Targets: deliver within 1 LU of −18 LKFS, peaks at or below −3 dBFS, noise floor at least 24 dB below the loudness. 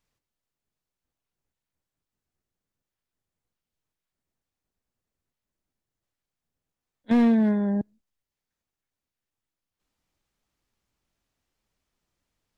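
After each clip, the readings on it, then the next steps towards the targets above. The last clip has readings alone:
share of clipped samples 0.3%; peaks flattened at −15.5 dBFS; integrated loudness −22.5 LKFS; sample peak −15.5 dBFS; target loudness −18.0 LKFS
→ clipped peaks rebuilt −15.5 dBFS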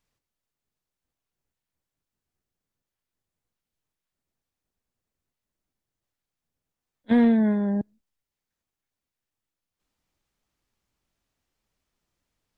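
share of clipped samples 0.0%; integrated loudness −22.0 LKFS; sample peak −11.0 dBFS; target loudness −18.0 LKFS
→ level +4 dB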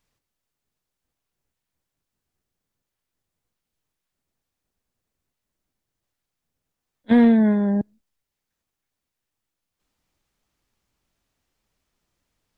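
integrated loudness −18.0 LKFS; sample peak −7.0 dBFS; background noise floor −84 dBFS

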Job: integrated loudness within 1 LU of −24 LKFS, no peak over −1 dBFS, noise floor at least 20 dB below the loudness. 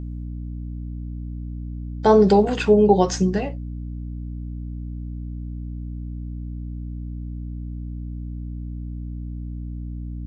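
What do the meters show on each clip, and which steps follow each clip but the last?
mains hum 60 Hz; hum harmonics up to 300 Hz; level of the hum −28 dBFS; integrated loudness −24.5 LKFS; sample peak −3.0 dBFS; target loudness −24.0 LKFS
→ hum removal 60 Hz, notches 5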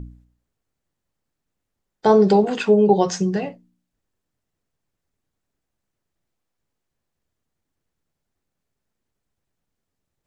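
mains hum none found; integrated loudness −17.5 LKFS; sample peak −3.0 dBFS; target loudness −24.0 LKFS
→ level −6.5 dB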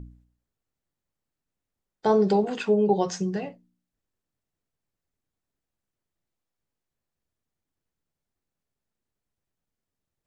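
integrated loudness −24.0 LKFS; sample peak −9.5 dBFS; background noise floor −87 dBFS

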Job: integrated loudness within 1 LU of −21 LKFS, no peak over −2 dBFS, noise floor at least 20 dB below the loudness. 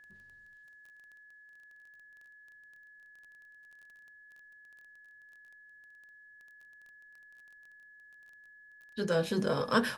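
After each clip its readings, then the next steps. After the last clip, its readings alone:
crackle rate 18 per second; interfering tone 1,700 Hz; level of the tone −54 dBFS; integrated loudness −31.5 LKFS; sample peak −14.0 dBFS; target loudness −21.0 LKFS
→ click removal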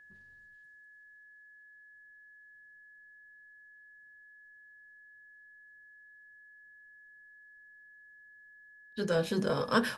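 crackle rate 0 per second; interfering tone 1,700 Hz; level of the tone −54 dBFS
→ notch filter 1,700 Hz, Q 30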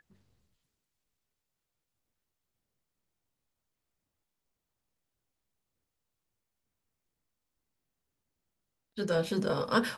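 interfering tone none found; integrated loudness −31.0 LKFS; sample peak −13.5 dBFS; target loudness −21.0 LKFS
→ level +10 dB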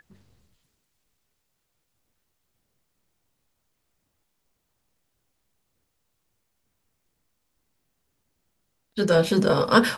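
integrated loudness −21.0 LKFS; sample peak −3.5 dBFS; background noise floor −76 dBFS

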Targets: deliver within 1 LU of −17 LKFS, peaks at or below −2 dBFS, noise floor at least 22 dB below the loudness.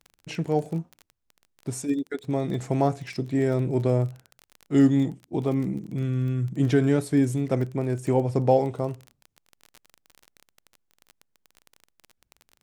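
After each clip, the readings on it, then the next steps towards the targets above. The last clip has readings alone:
crackle rate 23 per second; integrated loudness −25.5 LKFS; sample peak −7.5 dBFS; target loudness −17.0 LKFS
→ click removal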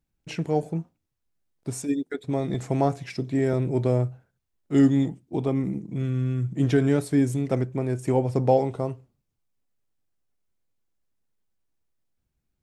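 crackle rate 0 per second; integrated loudness −25.5 LKFS; sample peak −7.5 dBFS; target loudness −17.0 LKFS
→ level +8.5 dB
brickwall limiter −2 dBFS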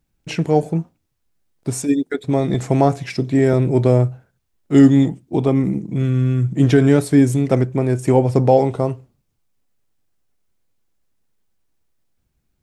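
integrated loudness −17.0 LKFS; sample peak −2.0 dBFS; background noise floor −71 dBFS

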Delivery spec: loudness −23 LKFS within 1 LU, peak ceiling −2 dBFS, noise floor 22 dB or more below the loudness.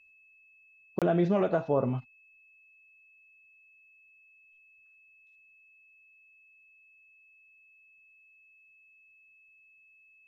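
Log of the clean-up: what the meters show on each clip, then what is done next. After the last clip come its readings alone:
number of dropouts 1; longest dropout 27 ms; interfering tone 2,600 Hz; level of the tone −58 dBFS; integrated loudness −28.5 LKFS; sample peak −15.0 dBFS; target loudness −23.0 LKFS
→ repair the gap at 0:00.99, 27 ms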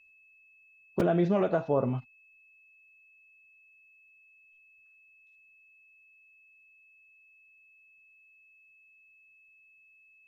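number of dropouts 0; interfering tone 2,600 Hz; level of the tone −58 dBFS
→ notch filter 2,600 Hz, Q 30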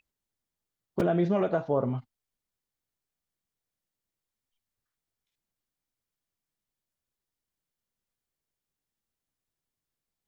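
interfering tone none found; integrated loudness −28.0 LKFS; sample peak −12.5 dBFS; target loudness −23.0 LKFS
→ level +5 dB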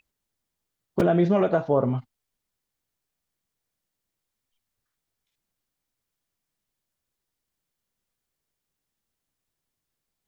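integrated loudness −23.0 LKFS; sample peak −7.5 dBFS; background noise floor −84 dBFS

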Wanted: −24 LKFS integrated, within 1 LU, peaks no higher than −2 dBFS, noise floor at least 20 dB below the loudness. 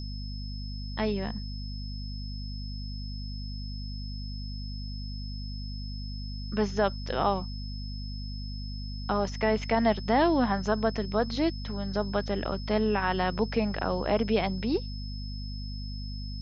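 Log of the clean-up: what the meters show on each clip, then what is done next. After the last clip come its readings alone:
mains hum 50 Hz; hum harmonics up to 250 Hz; level of the hum −34 dBFS; interfering tone 5,200 Hz; level of the tone −44 dBFS; integrated loudness −31.0 LKFS; sample peak −11.5 dBFS; target loudness −24.0 LKFS
→ hum removal 50 Hz, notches 5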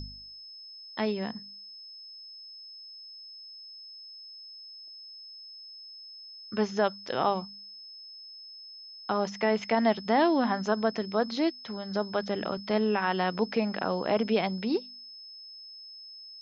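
mains hum none found; interfering tone 5,200 Hz; level of the tone −44 dBFS
→ notch filter 5,200 Hz, Q 30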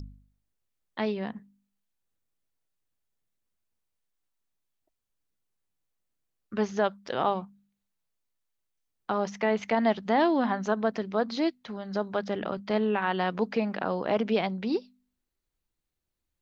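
interfering tone none found; integrated loudness −29.0 LKFS; sample peak −11.5 dBFS; target loudness −24.0 LKFS
→ level +5 dB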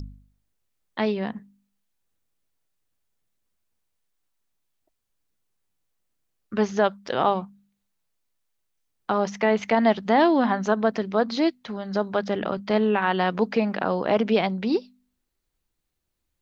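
integrated loudness −24.0 LKFS; sample peak −6.5 dBFS; background noise floor −78 dBFS

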